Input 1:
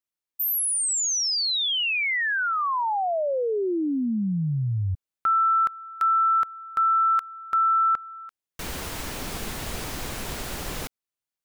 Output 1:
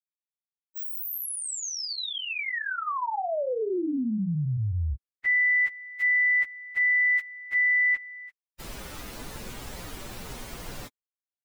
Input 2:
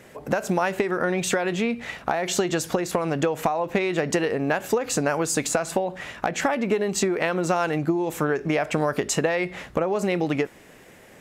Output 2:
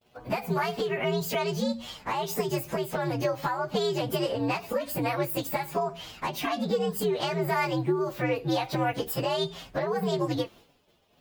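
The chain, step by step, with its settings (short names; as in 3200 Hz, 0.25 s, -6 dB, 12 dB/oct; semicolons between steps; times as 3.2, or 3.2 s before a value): inharmonic rescaling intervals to 124%; expander -45 dBFS; gain -1.5 dB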